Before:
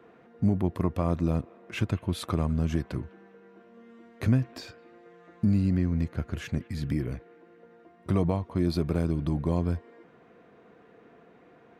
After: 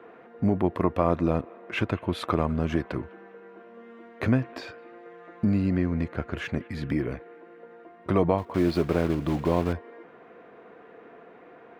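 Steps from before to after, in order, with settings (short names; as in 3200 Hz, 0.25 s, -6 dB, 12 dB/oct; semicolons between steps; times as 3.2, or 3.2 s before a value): 8.38–9.74 block floating point 5-bit; tone controls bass -11 dB, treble -15 dB; gain +8 dB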